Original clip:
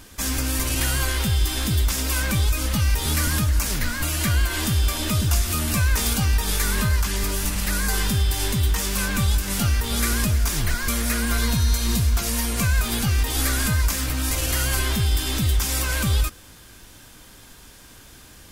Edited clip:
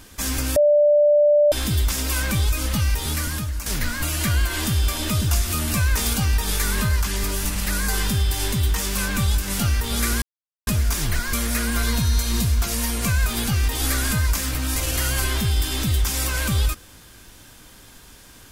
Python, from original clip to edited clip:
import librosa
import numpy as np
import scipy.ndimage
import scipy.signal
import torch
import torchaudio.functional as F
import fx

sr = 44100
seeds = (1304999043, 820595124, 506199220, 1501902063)

y = fx.edit(x, sr, fx.bleep(start_s=0.56, length_s=0.96, hz=590.0, db=-12.0),
    fx.fade_out_to(start_s=2.78, length_s=0.88, floor_db=-9.0),
    fx.insert_silence(at_s=10.22, length_s=0.45), tone=tone)